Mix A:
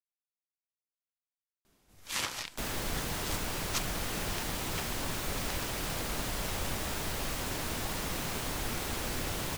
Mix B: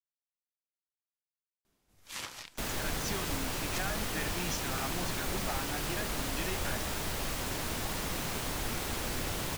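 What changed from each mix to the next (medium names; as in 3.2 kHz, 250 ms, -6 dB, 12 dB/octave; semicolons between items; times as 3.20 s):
speech: unmuted; first sound -7.0 dB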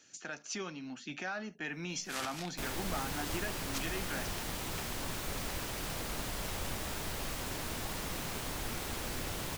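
speech: entry -2.55 s; second sound -3.5 dB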